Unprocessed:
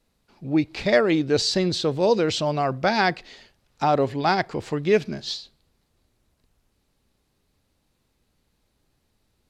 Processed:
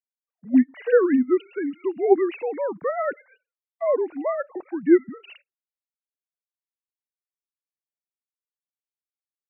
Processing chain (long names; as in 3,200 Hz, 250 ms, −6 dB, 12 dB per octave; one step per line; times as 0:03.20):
three sine waves on the formant tracks
noise gate −51 dBFS, range −29 dB
pitch shifter −3.5 semitones